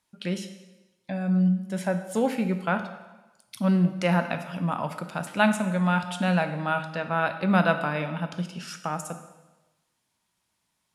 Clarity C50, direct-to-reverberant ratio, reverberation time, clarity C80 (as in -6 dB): 10.0 dB, 7.5 dB, 1.1 s, 12.0 dB